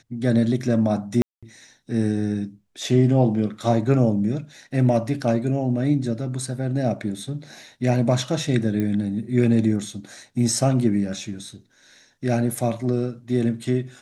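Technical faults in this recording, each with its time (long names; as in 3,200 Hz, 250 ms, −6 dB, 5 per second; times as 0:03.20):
0:01.22–0:01.43: drop-out 206 ms
0:08.80: click −15 dBFS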